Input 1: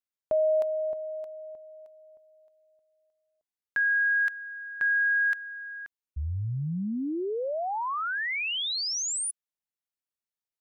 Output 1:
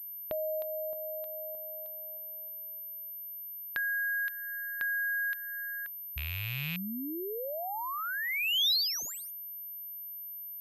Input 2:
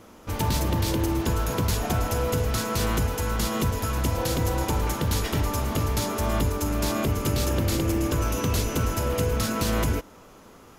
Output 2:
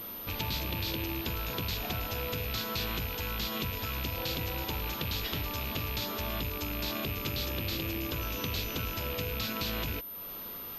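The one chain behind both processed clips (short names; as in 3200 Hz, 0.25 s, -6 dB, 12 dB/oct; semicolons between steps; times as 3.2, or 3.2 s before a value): rattling part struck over -29 dBFS, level -24 dBFS; compressor 2:1, threshold -43 dBFS; bell 3800 Hz +12.5 dB 1.3 oct; pulse-width modulation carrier 13000 Hz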